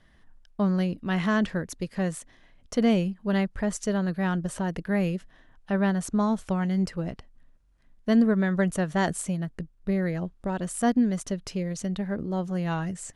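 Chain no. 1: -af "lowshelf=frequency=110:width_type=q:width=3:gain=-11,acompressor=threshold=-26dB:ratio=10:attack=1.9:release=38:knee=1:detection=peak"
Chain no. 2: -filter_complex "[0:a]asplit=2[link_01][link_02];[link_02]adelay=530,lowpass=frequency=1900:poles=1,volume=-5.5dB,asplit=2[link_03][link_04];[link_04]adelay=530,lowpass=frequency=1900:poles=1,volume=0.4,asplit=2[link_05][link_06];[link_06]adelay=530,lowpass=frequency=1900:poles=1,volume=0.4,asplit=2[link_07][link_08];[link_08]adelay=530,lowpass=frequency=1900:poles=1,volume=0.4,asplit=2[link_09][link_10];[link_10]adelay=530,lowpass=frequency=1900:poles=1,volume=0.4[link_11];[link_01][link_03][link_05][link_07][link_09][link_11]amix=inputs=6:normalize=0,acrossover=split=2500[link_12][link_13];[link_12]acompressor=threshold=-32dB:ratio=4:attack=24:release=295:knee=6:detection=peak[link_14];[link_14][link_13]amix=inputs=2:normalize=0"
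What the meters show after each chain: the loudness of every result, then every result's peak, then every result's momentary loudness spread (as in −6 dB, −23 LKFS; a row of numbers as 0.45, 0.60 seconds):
−30.5, −34.0 LKFS; −18.5, −17.5 dBFS; 5, 4 LU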